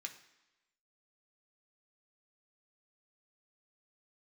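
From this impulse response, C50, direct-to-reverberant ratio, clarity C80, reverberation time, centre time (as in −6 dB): 11.0 dB, 3.0 dB, 14.0 dB, 1.0 s, 13 ms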